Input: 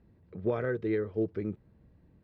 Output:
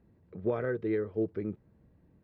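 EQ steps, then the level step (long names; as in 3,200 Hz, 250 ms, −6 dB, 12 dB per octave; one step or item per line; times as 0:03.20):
low-shelf EQ 95 Hz −5.5 dB
high-shelf EQ 3,200 Hz −8 dB
0.0 dB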